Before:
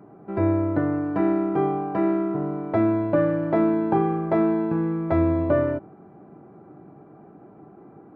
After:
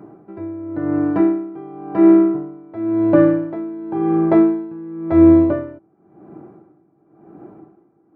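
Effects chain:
parametric band 330 Hz +9 dB 0.22 octaves
tremolo with a sine in dB 0.94 Hz, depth 21 dB
level +5.5 dB

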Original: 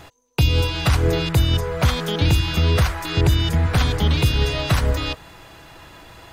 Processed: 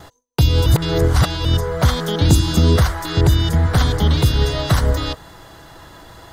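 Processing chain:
parametric band 2,500 Hz −12.5 dB 0.36 octaves
noise gate with hold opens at −41 dBFS
0:00.66–0:01.45: reverse
0:02.29–0:02.76: octave-band graphic EQ 250/2,000/8,000 Hz +9/−4/+9 dB
level +3 dB

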